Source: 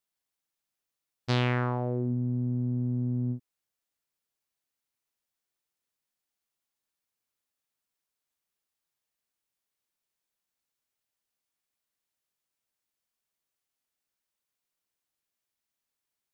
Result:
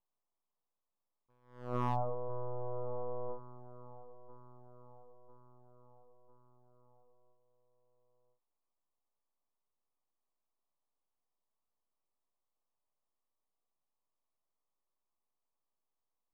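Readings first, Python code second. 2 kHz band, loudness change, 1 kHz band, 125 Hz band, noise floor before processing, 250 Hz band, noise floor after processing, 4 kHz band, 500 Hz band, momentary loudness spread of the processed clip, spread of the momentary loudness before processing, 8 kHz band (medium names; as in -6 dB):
-20.0 dB, -10.0 dB, -2.0 dB, -15.0 dB, under -85 dBFS, -16.5 dB, under -85 dBFS, under -20 dB, -3.0 dB, 23 LU, 6 LU, no reading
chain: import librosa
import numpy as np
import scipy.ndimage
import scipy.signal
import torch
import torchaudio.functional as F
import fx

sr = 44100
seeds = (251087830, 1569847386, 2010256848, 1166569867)

p1 = scipy.signal.sosfilt(scipy.signal.butter(4, 270.0, 'highpass', fs=sr, output='sos'), x)
p2 = np.abs(p1)
p3 = scipy.signal.sosfilt(scipy.signal.butter(12, 1200.0, 'lowpass', fs=sr, output='sos'), p2)
p4 = p3 + fx.echo_feedback(p3, sr, ms=999, feedback_pct=55, wet_db=-17.0, dry=0)
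p5 = np.clip(p4, -10.0 ** (-26.0 / 20.0), 10.0 ** (-26.0 / 20.0))
p6 = fx.low_shelf(p5, sr, hz=500.0, db=-8.0)
p7 = fx.attack_slew(p6, sr, db_per_s=110.0)
y = F.gain(torch.from_numpy(p7), 8.0).numpy()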